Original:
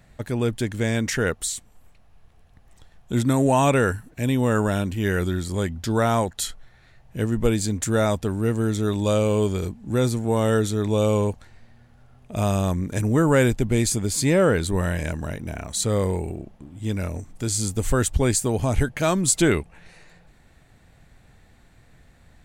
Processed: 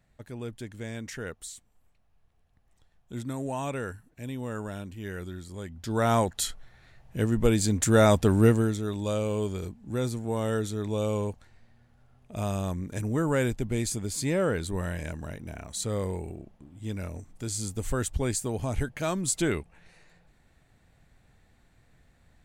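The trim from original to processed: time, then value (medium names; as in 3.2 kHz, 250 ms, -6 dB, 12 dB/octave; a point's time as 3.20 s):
5.64 s -14 dB
6.12 s -2 dB
7.46 s -2 dB
8.44 s +4.5 dB
8.81 s -8 dB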